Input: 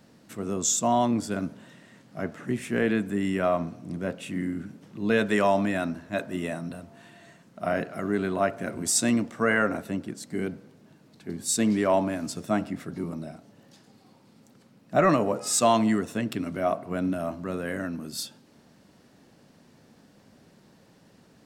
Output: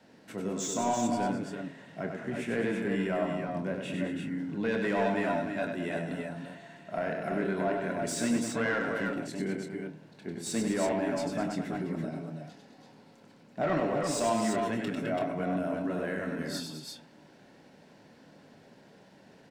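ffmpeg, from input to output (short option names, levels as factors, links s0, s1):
-filter_complex "[0:a]lowshelf=f=360:g=4,bandreject=f=1200:w=5.4,asplit=2[s0][s1];[s1]highpass=f=720:p=1,volume=6.31,asoftclip=type=tanh:threshold=0.398[s2];[s0][s2]amix=inputs=2:normalize=0,lowpass=f=2100:p=1,volume=0.501,acompressor=threshold=0.0316:ratio=1.5,adynamicequalizer=threshold=0.00447:dfrequency=160:dqfactor=2.4:tfrequency=160:tqfactor=2.4:attack=5:release=100:ratio=0.375:range=2.5:mode=boostabove:tftype=bell,atempo=1.1,asplit=2[s3][s4];[s4]adelay=26,volume=0.355[s5];[s3][s5]amix=inputs=2:normalize=0,aecho=1:1:97|209|331|338:0.562|0.316|0.376|0.501,volume=0.422"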